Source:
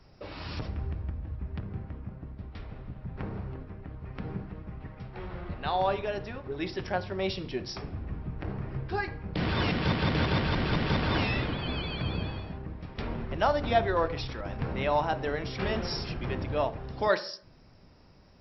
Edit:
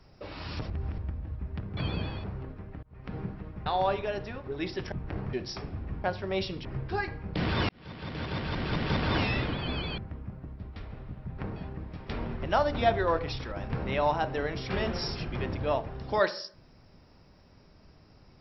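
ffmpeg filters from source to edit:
-filter_complex "[0:a]asplit=14[s0][s1][s2][s3][s4][s5][s6][s7][s8][s9][s10][s11][s12][s13];[s0]atrim=end=0.702[s14];[s1]atrim=start=0.698:end=0.982,asetpts=PTS-STARTPTS,areverse[s15];[s2]atrim=start=0.978:end=1.772[s16];[s3]atrim=start=11.978:end=12.452[s17];[s4]atrim=start=3.348:end=3.94,asetpts=PTS-STARTPTS,afade=t=out:st=0.588:d=0.004:c=hsin[s18];[s5]atrim=start=3.94:end=4.772,asetpts=PTS-STARTPTS,afade=t=in:d=0.32[s19];[s6]atrim=start=5.658:end=6.922[s20];[s7]atrim=start=8.238:end=8.652[s21];[s8]atrim=start=7.528:end=8.242[s22];[s9]atrim=start=6.918:end=7.532[s23];[s10]atrim=start=8.648:end=9.69,asetpts=PTS-STARTPTS,afade=t=out:st=1.038:d=0.004:c=hsin[s24];[s11]atrim=start=9.69:end=11.982,asetpts=PTS-STARTPTS,afade=t=in:d=1.42[s25];[s12]atrim=start=1.768:end=3.352[s26];[s13]atrim=start=12.448[s27];[s14][s15]acrossfade=d=0.004:c1=hsin:c2=hsin[s28];[s28][s16]acrossfade=d=0.004:c1=hsin:c2=hsin[s29];[s29][s17]acrossfade=d=0.004:c1=hsin:c2=hsin[s30];[s18][s19]concat=n=2:v=0:a=1[s31];[s30][s31]acrossfade=d=0.004:c1=hsin:c2=hsin[s32];[s32][s20]acrossfade=d=0.004:c1=hsin:c2=hsin[s33];[s33][s21]acrossfade=d=0.004:c1=hsin:c2=hsin[s34];[s34][s22]acrossfade=d=0.004:c1=hsin:c2=hsin[s35];[s35][s23]acrossfade=d=0.004:c1=hsin:c2=hsin[s36];[s24][s25]concat=n=2:v=0:a=1[s37];[s36][s37]acrossfade=d=0.004:c1=hsin:c2=hsin[s38];[s38][s26]acrossfade=d=0.004:c1=hsin:c2=hsin[s39];[s39][s27]acrossfade=d=0.004:c1=hsin:c2=hsin"

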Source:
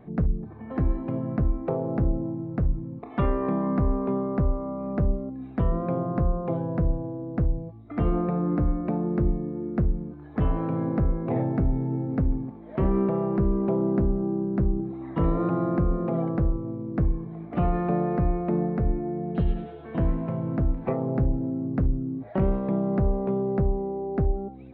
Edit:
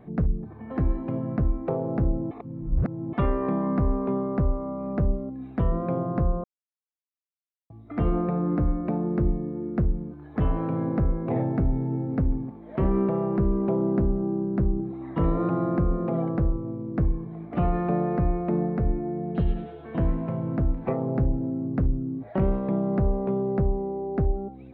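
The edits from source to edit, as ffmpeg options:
-filter_complex "[0:a]asplit=5[s0][s1][s2][s3][s4];[s0]atrim=end=2.312[s5];[s1]atrim=start=2.308:end=3.132,asetpts=PTS-STARTPTS,areverse[s6];[s2]atrim=start=3.128:end=6.44,asetpts=PTS-STARTPTS,afade=t=out:st=3.308:d=0.004:c=hsin[s7];[s3]atrim=start=6.44:end=7.7,asetpts=PTS-STARTPTS,volume=0[s8];[s4]atrim=start=7.7,asetpts=PTS-STARTPTS,afade=t=in:d=0.004:c=hsin[s9];[s5][s6]acrossfade=d=0.004:c1=hsin:c2=hsin[s10];[s7][s8][s9]concat=n=3:v=0:a=1[s11];[s10][s11]acrossfade=d=0.004:c1=hsin:c2=hsin"

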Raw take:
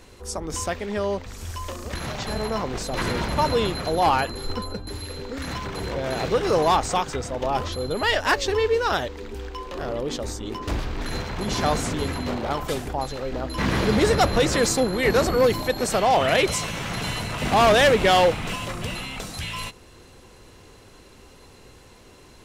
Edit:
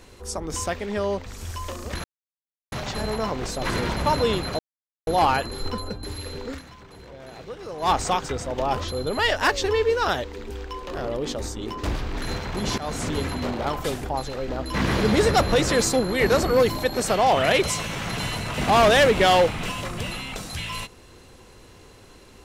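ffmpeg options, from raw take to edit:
-filter_complex "[0:a]asplit=6[s0][s1][s2][s3][s4][s5];[s0]atrim=end=2.04,asetpts=PTS-STARTPTS,afade=t=out:st=2.036:d=0.004:c=hsin,apad=pad_dur=0.68[s6];[s1]atrim=start=2.04:end=3.91,asetpts=PTS-STARTPTS,afade=t=in:d=0.004:c=hsin,afade=t=out:st=1.866:d=0.004:c=hsin,apad=pad_dur=0.48[s7];[s2]atrim=start=3.91:end=5.5,asetpts=PTS-STARTPTS,afade=t=in:d=0.004:c=hsin,afade=t=out:st=1.45:d=0.14:c=qua:silence=0.177828[s8];[s3]atrim=start=5.5:end=6.6,asetpts=PTS-STARTPTS,volume=0.178[s9];[s4]atrim=start=6.6:end=11.62,asetpts=PTS-STARTPTS,afade=t=in:d=0.14:c=qua:silence=0.177828,afade=t=out:st=5.016:d=0.004:c=hsin:silence=0.149624[s10];[s5]atrim=start=11.62,asetpts=PTS-STARTPTS,afade=t=in:d=0.3:silence=0.149624[s11];[s6][s7][s8][s9][s10][s11]concat=n=6:v=0:a=1"

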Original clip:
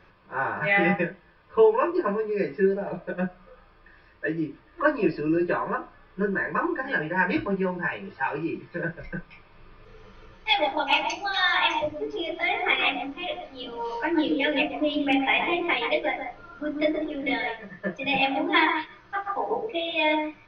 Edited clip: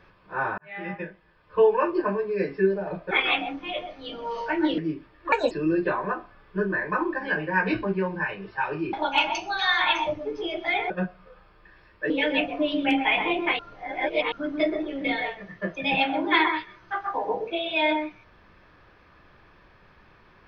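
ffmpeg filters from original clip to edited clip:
-filter_complex "[0:a]asplit=11[s0][s1][s2][s3][s4][s5][s6][s7][s8][s9][s10];[s0]atrim=end=0.58,asetpts=PTS-STARTPTS,afade=t=out:st=0.576:d=0.004:c=hsin[s11];[s1]atrim=start=0.58:end=3.112,asetpts=PTS-STARTPTS,afade=t=in:d=1.16[s12];[s2]atrim=start=12.648:end=14.322[s13];[s3]atrim=start=4.308:end=4.854[s14];[s4]atrim=start=4.85:end=5.14,asetpts=PTS-STARTPTS,asetrate=67032,aresample=44100[s15];[s5]atrim=start=5.136:end=8.562[s16];[s6]atrim=start=10.678:end=12.652[s17];[s7]atrim=start=3.108:end=4.312[s18];[s8]atrim=start=14.318:end=15.812[s19];[s9]atrim=start=15.808:end=16.542,asetpts=PTS-STARTPTS,areverse[s20];[s10]atrim=start=16.538[s21];[s11][s12]concat=n=2:v=0:a=1[s22];[s22][s13]acrossfade=d=0.004:c1=hsin:c2=hsin[s23];[s23][s14]acrossfade=d=0.004:c1=hsin:c2=hsin[s24];[s24][s15]acrossfade=d=0.004:c1=hsin:c2=hsin[s25];[s25][s16]acrossfade=d=0.004:c1=hsin:c2=hsin[s26];[s26][s17]acrossfade=d=0.004:c1=hsin:c2=hsin[s27];[s27][s18]acrossfade=d=0.004:c1=hsin:c2=hsin[s28];[s28][s19]acrossfade=d=0.004:c1=hsin:c2=hsin[s29];[s29][s20]acrossfade=d=0.004:c1=hsin:c2=hsin[s30];[s30][s21]acrossfade=d=0.004:c1=hsin:c2=hsin"

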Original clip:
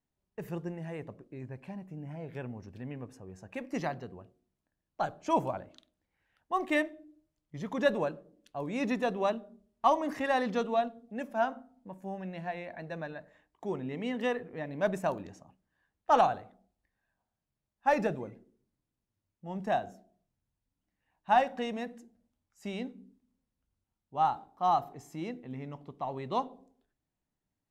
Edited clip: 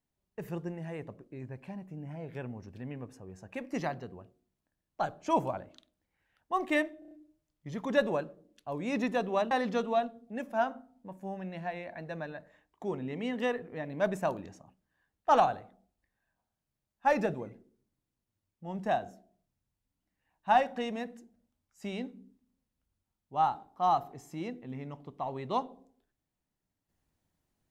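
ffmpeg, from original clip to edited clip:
-filter_complex "[0:a]asplit=6[s0][s1][s2][s3][s4][s5];[s0]atrim=end=7.022[s6];[s1]atrim=start=6.988:end=7.022[s7];[s2]atrim=start=6.988:end=7.022[s8];[s3]atrim=start=6.988:end=7.022[s9];[s4]atrim=start=6.988:end=9.392[s10];[s5]atrim=start=10.318[s11];[s6][s7]acrossfade=d=0.004:c1=hsin:c2=hsin[s12];[s12][s8]acrossfade=d=0.004:c1=hsin:c2=hsin[s13];[s13][s9]acrossfade=d=0.004:c1=hsin:c2=hsin[s14];[s14][s10]acrossfade=d=0.004:c1=hsin:c2=hsin[s15];[s15][s11]acrossfade=d=0.004:c1=hsin:c2=hsin"

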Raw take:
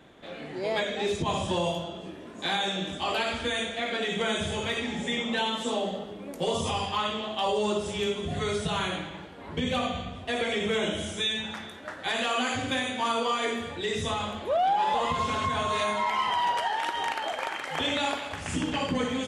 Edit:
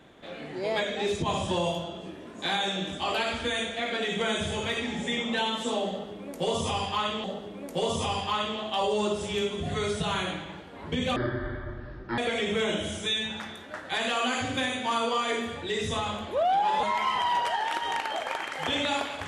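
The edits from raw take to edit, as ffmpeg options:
-filter_complex "[0:a]asplit=5[s0][s1][s2][s3][s4];[s0]atrim=end=7.242[s5];[s1]atrim=start=5.888:end=9.814[s6];[s2]atrim=start=9.81:end=10.32,asetpts=PTS-STARTPTS,asetrate=22050,aresample=44100[s7];[s3]atrim=start=10.316:end=14.972[s8];[s4]atrim=start=15.948[s9];[s5][s6]acrossfade=d=0.004:c1=hsin:c2=hsin[s10];[s10][s7]acrossfade=d=0.004:c1=hsin:c2=hsin[s11];[s11][s8]acrossfade=d=0.004:c1=hsin:c2=hsin[s12];[s12][s9]acrossfade=d=0.004:c1=hsin:c2=hsin"

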